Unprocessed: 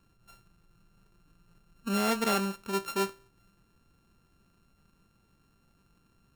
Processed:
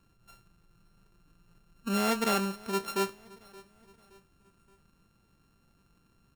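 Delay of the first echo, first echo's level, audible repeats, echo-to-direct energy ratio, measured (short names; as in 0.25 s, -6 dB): 0.572 s, -22.0 dB, 2, -21.0 dB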